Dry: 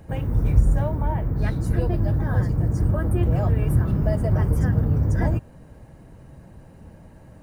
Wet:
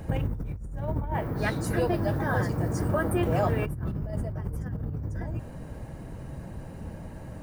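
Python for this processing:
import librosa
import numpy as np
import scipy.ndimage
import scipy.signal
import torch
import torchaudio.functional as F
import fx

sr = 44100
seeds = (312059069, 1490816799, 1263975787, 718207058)

y = fx.highpass(x, sr, hz=500.0, slope=6, at=(1.14, 3.66))
y = fx.over_compress(y, sr, threshold_db=-29.0, ratio=-1.0)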